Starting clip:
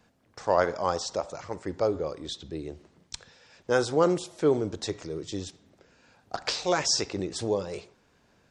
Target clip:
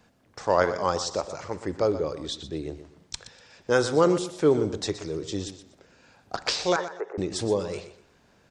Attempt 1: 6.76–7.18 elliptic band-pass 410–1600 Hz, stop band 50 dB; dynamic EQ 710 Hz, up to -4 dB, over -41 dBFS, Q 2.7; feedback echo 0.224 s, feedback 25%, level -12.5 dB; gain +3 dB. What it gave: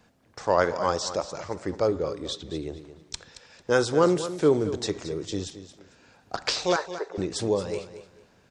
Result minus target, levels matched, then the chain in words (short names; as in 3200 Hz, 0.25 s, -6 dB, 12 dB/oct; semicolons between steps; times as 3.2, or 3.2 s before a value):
echo 0.102 s late
6.76–7.18 elliptic band-pass 410–1600 Hz, stop band 50 dB; dynamic EQ 710 Hz, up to -4 dB, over -41 dBFS, Q 2.7; feedback echo 0.122 s, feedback 25%, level -12.5 dB; gain +3 dB